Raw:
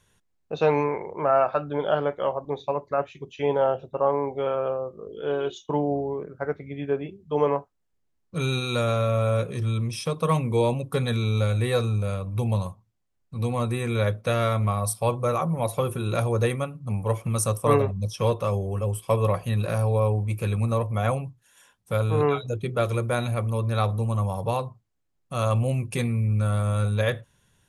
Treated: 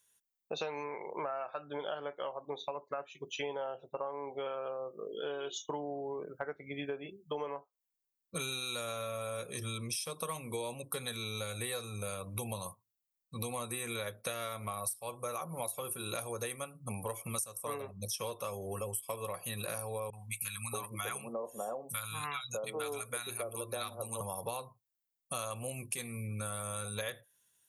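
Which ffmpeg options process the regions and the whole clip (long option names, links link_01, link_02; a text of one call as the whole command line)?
ffmpeg -i in.wav -filter_complex "[0:a]asettb=1/sr,asplit=3[link_01][link_02][link_03];[link_01]atrim=end=20.104[link_04];[link_02]atrim=start=20.1:end=24.21,asetpts=PTS-STARTPTS,afade=type=in:duration=0.004:curve=qsin,afade=type=out:start_time=4.106:duration=0.004:curve=qsin,lowshelf=frequency=120:gain=-10,acrossover=split=190|920[link_05][link_06][link_07];[link_07]adelay=30[link_08];[link_06]adelay=630[link_09];[link_05][link_09][link_08]amix=inputs=3:normalize=0,atrim=end_sample=181251[link_10];[link_03]atrim=start=24.206[link_11];[link_04][link_10]acrossfade=duration=0.004:curve1=hsin:curve2=qsin[link_12];[link_12][link_11]acrossfade=duration=0.004:curve1=qsin:curve2=hsin,aemphasis=mode=production:type=riaa,afftdn=noise_reduction=16:noise_floor=-49,acompressor=threshold=-36dB:ratio=12,volume=1dB" out.wav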